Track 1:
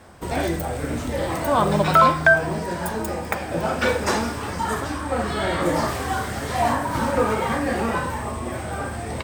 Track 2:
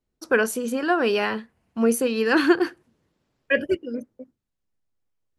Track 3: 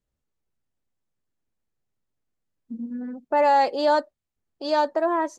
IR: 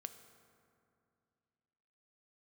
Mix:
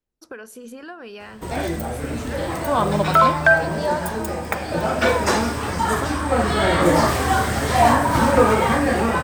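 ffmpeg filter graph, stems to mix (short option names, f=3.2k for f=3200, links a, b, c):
-filter_complex "[0:a]dynaudnorm=f=200:g=17:m=11.5dB,adelay=1200,volume=-3dB,asplit=2[a][b];[b]volume=-7.5dB[c];[1:a]asubboost=boost=11:cutoff=130,acompressor=threshold=-27dB:ratio=6,volume=-8.5dB,asplit=2[d][e];[e]volume=-11dB[f];[2:a]highpass=520,aphaser=in_gain=1:out_gain=1:delay=1.1:decay=0.56:speed=0.78:type=sinusoidal,volume=-8dB[g];[3:a]atrim=start_sample=2205[h];[c][f]amix=inputs=2:normalize=0[i];[i][h]afir=irnorm=-1:irlink=0[j];[a][d][g][j]amix=inputs=4:normalize=0"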